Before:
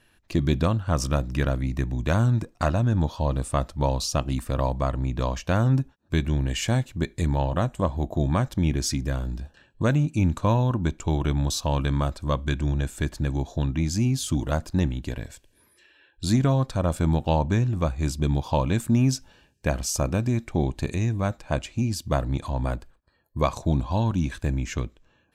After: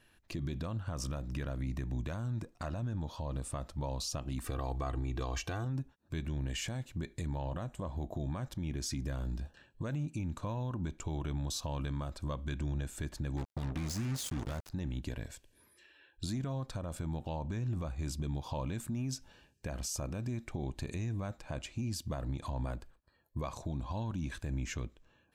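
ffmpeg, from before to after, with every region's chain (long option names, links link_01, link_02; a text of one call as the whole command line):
ffmpeg -i in.wav -filter_complex "[0:a]asettb=1/sr,asplit=3[link_01][link_02][link_03];[link_01]atrim=end=4.444[link_04];[link_02]atrim=start=4.44:end=5.65,asetpts=PTS-STARTPTS,afade=type=in:duration=0.004:curve=qsin,afade=type=out:start_time=1.206:duration=0.004:curve=qsin,aecho=1:1:2.6:0.72,atrim=end_sample=53361,acontrast=29,highpass=frequency=64:poles=1[link_05];[link_03]atrim=start=5.646[link_06];[link_04][link_05]acrossfade=duration=0.004:curve1=hsin:curve2=qsin[link_07];[link_07][link_06]acrossfade=duration=0.004:curve1=qsin:curve2=hsin,asettb=1/sr,asplit=3[link_08][link_09][link_10];[link_08]atrim=end=13.374[link_11];[link_09]atrim=start=13.37:end=14.7,asetpts=PTS-STARTPTS,afade=type=in:duration=0.004:curve=qsin,afade=type=out:start_time=1.326:duration=0.004:curve=qsin,equalizer=frequency=530:width=0.56:gain=-2,acrusher=bits=4:mix=0:aa=0.5[link_12];[link_10]atrim=start=14.696[link_13];[link_11][link_12]acrossfade=duration=0.004:curve1=hsin:curve2=qsin[link_14];[link_14][link_13]acrossfade=duration=0.004:curve1=qsin:curve2=hsin,acompressor=threshold=-28dB:ratio=2,alimiter=limit=-24dB:level=0:latency=1:release=40,volume=-4.5dB" out.wav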